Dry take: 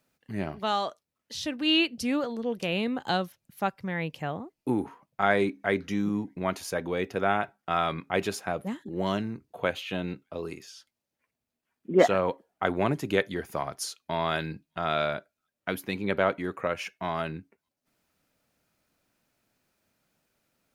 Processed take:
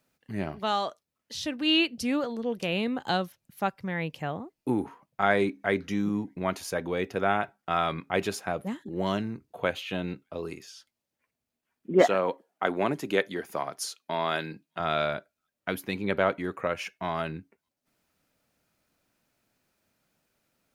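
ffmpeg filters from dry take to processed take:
-filter_complex "[0:a]asettb=1/sr,asplit=3[s0][s1][s2];[s0]atrim=end=12.014[s3];[s1]atrim=start=12.01:end=14.8,asetpts=PTS-STARTPTS,afade=t=in:d=0.004:c=qsin,afade=t=out:st=2.786:d=0.004:c=qsin,highpass=200[s4];[s2]atrim=start=14.796[s5];[s3][s4]acrossfade=d=0.004:c1=hsin:c2=qsin[s6];[s6][s5]acrossfade=d=0.004:c1=qsin:c2=hsin"

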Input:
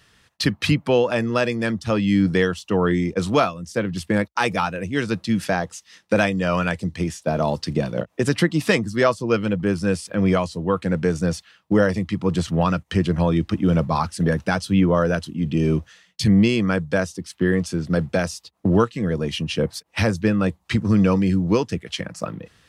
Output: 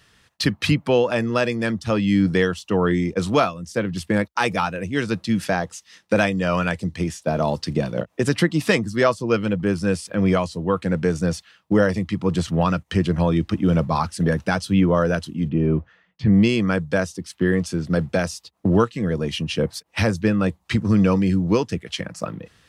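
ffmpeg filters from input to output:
-filter_complex "[0:a]asplit=3[s0][s1][s2];[s0]afade=t=out:st=15.48:d=0.02[s3];[s1]lowpass=1600,afade=t=in:st=15.48:d=0.02,afade=t=out:st=16.32:d=0.02[s4];[s2]afade=t=in:st=16.32:d=0.02[s5];[s3][s4][s5]amix=inputs=3:normalize=0"

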